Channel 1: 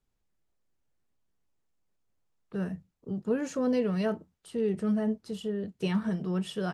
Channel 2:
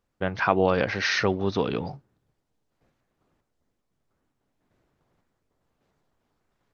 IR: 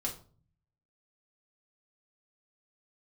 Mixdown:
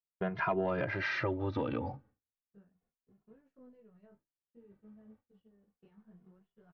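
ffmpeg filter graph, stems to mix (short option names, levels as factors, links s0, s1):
-filter_complex "[0:a]equalizer=f=170:w=1.3:g=3,acompressor=threshold=0.0158:ratio=4,flanger=delay=18:depth=6.7:speed=0.6,volume=0.126[s0];[1:a]asoftclip=type=tanh:threshold=0.355,asplit=2[s1][s2];[s2]adelay=2.4,afreqshift=-0.31[s3];[s1][s3]amix=inputs=2:normalize=1,volume=1.26[s4];[s0][s4]amix=inputs=2:normalize=0,lowpass=2100,agate=range=0.0224:threshold=0.002:ratio=3:detection=peak,acompressor=threshold=0.02:ratio=2"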